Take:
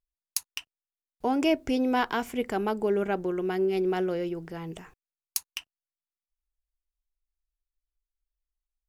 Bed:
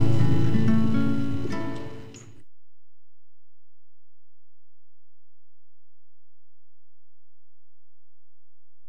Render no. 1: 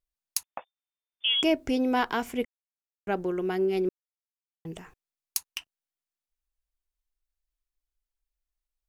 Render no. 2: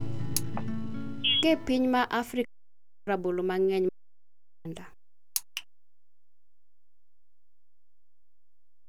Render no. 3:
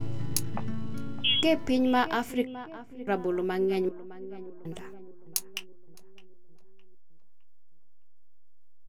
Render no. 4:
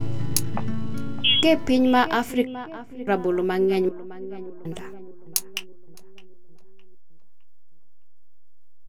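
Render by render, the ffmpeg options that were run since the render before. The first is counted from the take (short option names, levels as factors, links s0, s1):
-filter_complex "[0:a]asettb=1/sr,asplit=3[s0][s1][s2];[s0]atrim=end=0.434[s3];[s1]atrim=start=0.43:end=1.43,asetpts=PTS-STARTPTS,afade=t=in:d=0.004:c=qsin,afade=t=out:st=0.996:d=0.004:c=qsin,lowpass=f=3100:t=q:w=0.5098,lowpass=f=3100:t=q:w=0.6013,lowpass=f=3100:t=q:w=0.9,lowpass=f=3100:t=q:w=2.563,afreqshift=-3600[s4];[s2]atrim=start=1.426[s5];[s3][s4]acrossfade=d=0.004:c1=hsin:c2=qsin[s6];[s6][s5]acrossfade=d=0.004:c1=qsin:c2=hsin,asplit=5[s7][s8][s9][s10][s11];[s7]atrim=end=2.45,asetpts=PTS-STARTPTS,afade=t=out:st=2.446:d=0.004:c=hsin[s12];[s8]atrim=start=2.45:end=3.07,asetpts=PTS-STARTPTS,volume=0[s13];[s9]atrim=start=3.07:end=3.89,asetpts=PTS-STARTPTS,afade=t=in:d=0.004:c=hsin,afade=t=out:st=0.816:d=0.004:c=hsin[s14];[s10]atrim=start=3.89:end=4.65,asetpts=PTS-STARTPTS,volume=0[s15];[s11]atrim=start=4.65,asetpts=PTS-STARTPTS,afade=t=in:d=0.004:c=hsin[s16];[s12][s13][s14][s15][s16]concat=n=5:v=0:a=1"
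-filter_complex "[1:a]volume=0.211[s0];[0:a][s0]amix=inputs=2:normalize=0"
-filter_complex "[0:a]asplit=2[s0][s1];[s1]adelay=20,volume=0.211[s2];[s0][s2]amix=inputs=2:normalize=0,asplit=2[s3][s4];[s4]adelay=612,lowpass=f=1600:p=1,volume=0.178,asplit=2[s5][s6];[s6]adelay=612,lowpass=f=1600:p=1,volume=0.51,asplit=2[s7][s8];[s8]adelay=612,lowpass=f=1600:p=1,volume=0.51,asplit=2[s9][s10];[s10]adelay=612,lowpass=f=1600:p=1,volume=0.51,asplit=2[s11][s12];[s12]adelay=612,lowpass=f=1600:p=1,volume=0.51[s13];[s3][s5][s7][s9][s11][s13]amix=inputs=6:normalize=0"
-af "volume=2"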